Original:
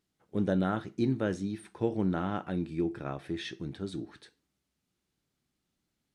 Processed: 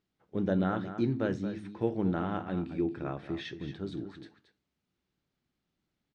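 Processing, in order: air absorption 120 m; de-hum 52.59 Hz, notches 6; on a send: echo 0.226 s -11 dB

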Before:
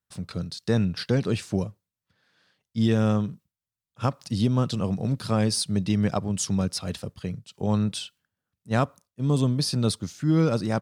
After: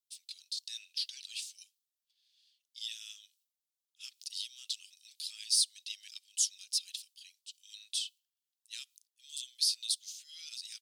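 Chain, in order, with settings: steep high-pass 3000 Hz 36 dB/oct

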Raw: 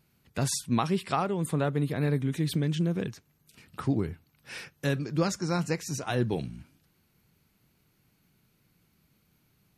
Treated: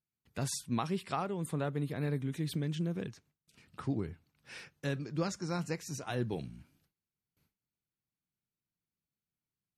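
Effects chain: gate with hold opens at -55 dBFS; 3.07–5.37 LPF 9600 Hz 12 dB/oct; gain -7 dB

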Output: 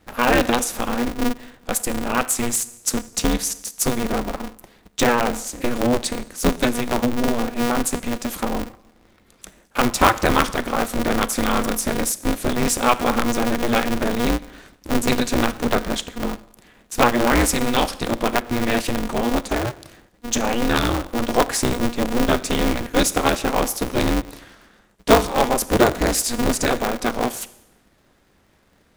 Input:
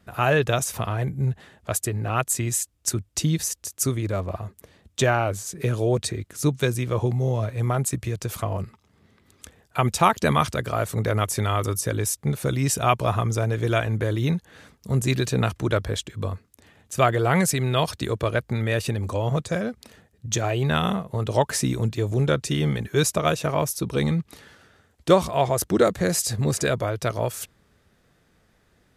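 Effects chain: Schroeder reverb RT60 0.82 s, combs from 27 ms, DRR 15 dB; vibrato 13 Hz 14 cents; polarity switched at an audio rate 120 Hz; gain +3 dB

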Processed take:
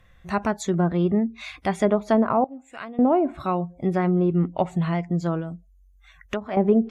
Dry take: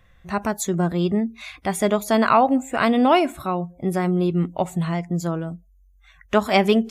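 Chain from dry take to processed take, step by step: treble ducked by the level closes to 610 Hz, closed at -13 dBFS; 2.44–2.99 pre-emphasis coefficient 0.9; 5.4–6.57 compressor 2.5:1, threshold -29 dBFS, peak gain reduction 11.5 dB

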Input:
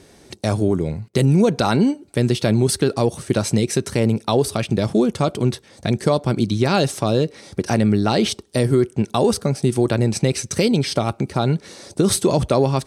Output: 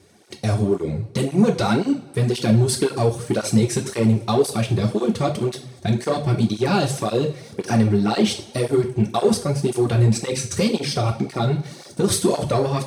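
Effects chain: sample leveller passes 1; two-slope reverb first 0.36 s, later 1.5 s, from -18 dB, DRR 2.5 dB; tape flanging out of phase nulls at 1.9 Hz, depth 4.8 ms; gain -3.5 dB

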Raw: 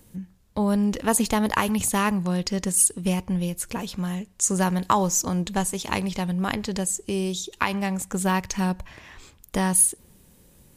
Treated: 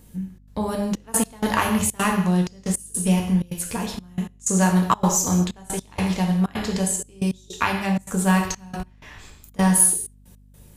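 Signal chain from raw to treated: non-linear reverb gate 0.26 s falling, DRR 0.5 dB; step gate "xxxx.xxxxx..x..x" 158 bpm -24 dB; hum 50 Hz, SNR 28 dB

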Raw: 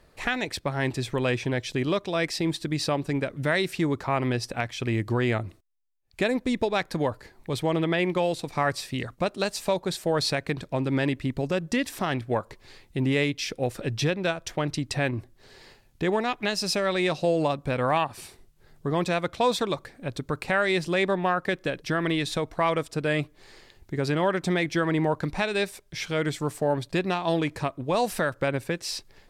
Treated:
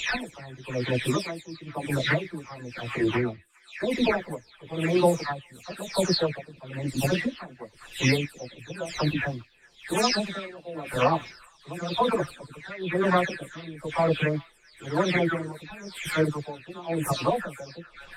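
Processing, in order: spectral delay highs early, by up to 0.597 s; plain phase-vocoder stretch 0.62×; on a send: delay with a stepping band-pass 0.412 s, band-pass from 1600 Hz, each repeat 0.7 oct, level -10 dB; on the sum: dB-linear tremolo 0.99 Hz, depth 19 dB; gain +8.5 dB

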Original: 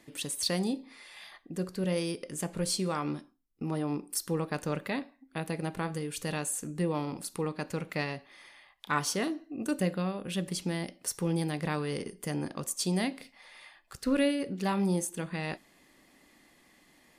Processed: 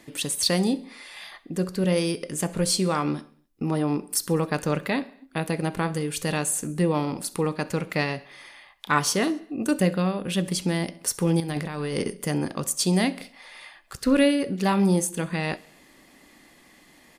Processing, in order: 11.4–12.13 negative-ratio compressor -35 dBFS, ratio -0.5; feedback echo 66 ms, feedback 60%, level -23 dB; gain +7.5 dB

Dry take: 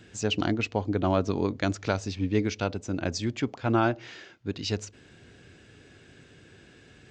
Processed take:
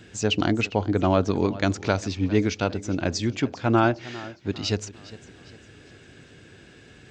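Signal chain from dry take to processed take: warbling echo 0.403 s, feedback 42%, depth 82 cents, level -18 dB; gain +4 dB

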